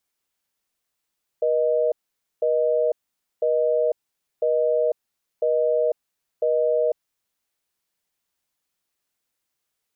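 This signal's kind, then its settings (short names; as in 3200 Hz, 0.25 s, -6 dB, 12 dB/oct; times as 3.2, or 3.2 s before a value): call progress tone busy tone, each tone -20.5 dBFS 5.88 s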